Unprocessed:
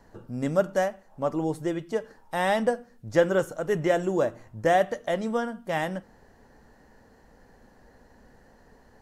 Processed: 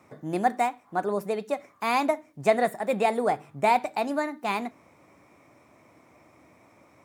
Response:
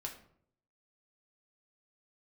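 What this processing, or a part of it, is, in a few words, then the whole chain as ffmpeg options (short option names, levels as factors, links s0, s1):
nightcore: -af "highpass=f=78:w=0.5412,highpass=f=78:w=1.3066,asetrate=56448,aresample=44100"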